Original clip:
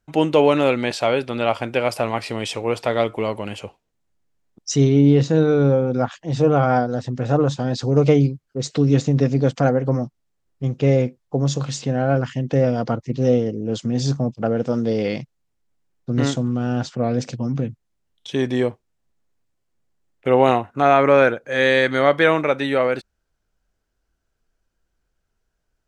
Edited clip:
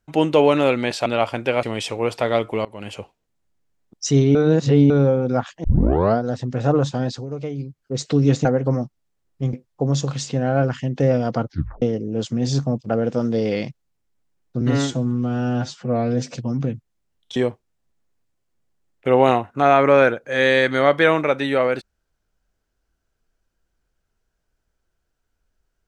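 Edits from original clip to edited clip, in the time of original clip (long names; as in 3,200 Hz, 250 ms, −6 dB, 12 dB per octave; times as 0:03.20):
0:01.06–0:01.34: remove
0:01.91–0:02.28: remove
0:03.30–0:03.59: fade in, from −22.5 dB
0:05.00–0:05.55: reverse
0:06.29: tape start 0.54 s
0:07.68–0:08.46: duck −14 dB, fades 0.24 s
0:09.10–0:09.66: remove
0:10.74–0:11.06: remove
0:13.00: tape stop 0.35 s
0:16.14–0:17.30: time-stretch 1.5×
0:18.31–0:18.56: remove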